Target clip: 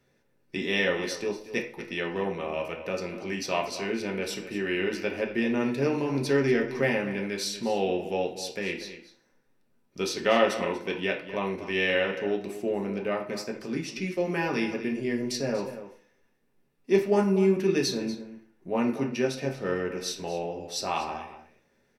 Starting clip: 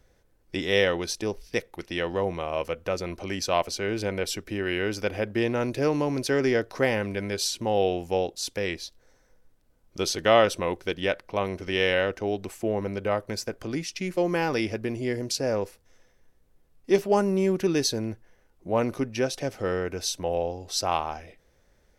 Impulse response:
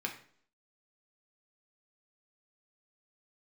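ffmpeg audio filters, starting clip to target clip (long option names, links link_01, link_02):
-filter_complex "[0:a]asplit=2[link_01][link_02];[link_02]adelay=239.1,volume=-12dB,highshelf=frequency=4000:gain=-5.38[link_03];[link_01][link_03]amix=inputs=2:normalize=0[link_04];[1:a]atrim=start_sample=2205,asetrate=48510,aresample=44100[link_05];[link_04][link_05]afir=irnorm=-1:irlink=0,volume=-3dB"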